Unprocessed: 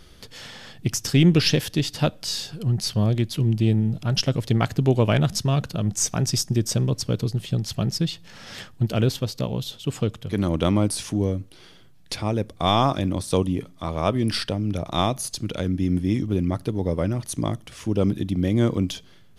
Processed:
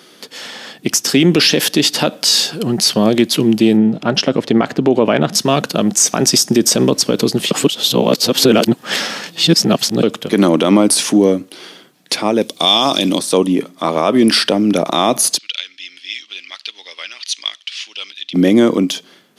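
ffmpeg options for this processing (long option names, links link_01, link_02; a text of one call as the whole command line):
ffmpeg -i in.wav -filter_complex "[0:a]asettb=1/sr,asplit=3[link_01][link_02][link_03];[link_01]atrim=end=3.774[link_04];[link_02]atrim=start=3.77:end=5.33,asetpts=PTS-STARTPTS,afade=type=in:duration=0.004:curve=qsin,afade=type=out:start_time=1.556:duration=0.004:curve=qsin,aemphasis=mode=reproduction:type=75fm[link_05];[link_03]atrim=start=5.326[link_06];[link_04][link_05]acrossfade=duration=0.004:curve1=hsin:curve2=qsin[link_07];[link_07][link_06]acrossfade=duration=0.004:curve1=qsin:curve2=hsin,asettb=1/sr,asplit=3[link_08][link_09][link_10];[link_08]atrim=end=12.414[link_11];[link_09]atrim=start=12.41:end=13.19,asetpts=PTS-STARTPTS,afade=type=in:duration=0.004:curve=qsin,afade=type=out:start_time=0.776:duration=0.004:curve=qsin,highshelf=frequency=2400:width_type=q:width=1.5:gain=10[link_12];[link_10]atrim=start=13.186[link_13];[link_11][link_12]acrossfade=duration=0.004:curve1=hsin:curve2=qsin[link_14];[link_14][link_13]acrossfade=duration=0.004:curve1=qsin:curve2=hsin,asplit=3[link_15][link_16][link_17];[link_15]afade=type=out:start_time=15.37:duration=0.02[link_18];[link_16]asuperpass=centerf=3500:order=4:qfactor=1.4,afade=type=in:start_time=15.37:duration=0.02,afade=type=out:start_time=18.33:duration=0.02[link_19];[link_17]afade=type=in:start_time=18.33:duration=0.02[link_20];[link_18][link_19][link_20]amix=inputs=3:normalize=0,asplit=3[link_21][link_22][link_23];[link_21]atrim=end=7.512[link_24];[link_22]atrim=start=7.508:end=10.032,asetpts=PTS-STARTPTS,areverse[link_25];[link_23]atrim=start=10.028[link_26];[link_24][link_25]acrossfade=duration=0.004:curve1=hsin:curve2=hsin[link_27];[link_27][link_26]acrossfade=duration=0.004:curve1=hsin:curve2=hsin,highpass=frequency=220:width=0.5412,highpass=frequency=220:width=1.3066,dynaudnorm=framelen=140:gausssize=17:maxgain=11.5dB,alimiter=level_in=11dB:limit=-1dB:release=50:level=0:latency=1,volume=-1dB" out.wav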